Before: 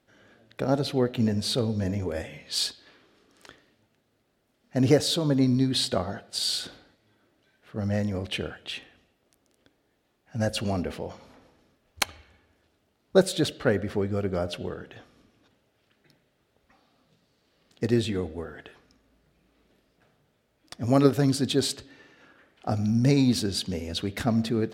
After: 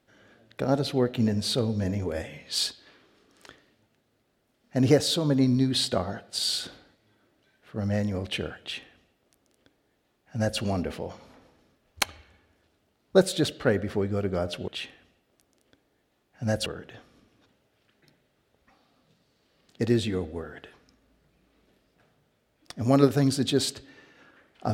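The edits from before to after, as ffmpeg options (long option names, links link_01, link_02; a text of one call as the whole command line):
ffmpeg -i in.wav -filter_complex "[0:a]asplit=3[link_01][link_02][link_03];[link_01]atrim=end=14.682[link_04];[link_02]atrim=start=8.608:end=10.592[link_05];[link_03]atrim=start=14.678[link_06];[link_04][link_05]acrossfade=duration=0.004:curve1=hsin:curve2=hsin[link_07];[link_07][link_06]acrossfade=duration=0.004:curve1=hsin:curve2=hsin" out.wav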